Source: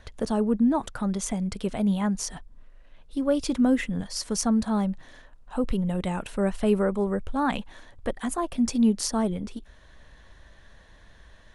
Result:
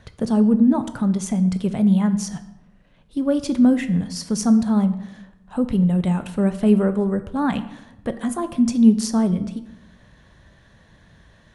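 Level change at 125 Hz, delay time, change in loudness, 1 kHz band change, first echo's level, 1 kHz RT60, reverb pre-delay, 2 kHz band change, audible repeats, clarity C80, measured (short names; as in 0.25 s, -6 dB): +9.0 dB, none, +6.5 dB, +1.0 dB, none, 0.85 s, 13 ms, +0.5 dB, none, 15.5 dB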